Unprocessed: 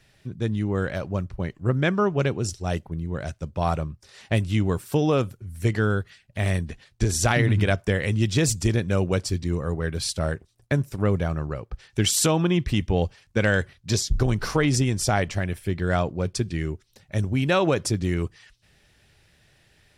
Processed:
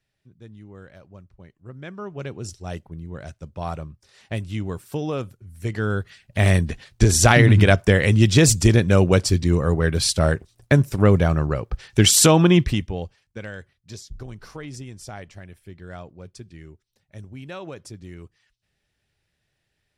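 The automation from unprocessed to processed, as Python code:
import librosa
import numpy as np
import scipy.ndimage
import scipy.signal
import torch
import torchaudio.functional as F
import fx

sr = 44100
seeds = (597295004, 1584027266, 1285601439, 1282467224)

y = fx.gain(x, sr, db=fx.line((1.67, -18.0), (2.48, -5.5), (5.6, -5.5), (6.39, 7.0), (12.6, 7.0), (12.92, -6.0), (13.53, -15.0)))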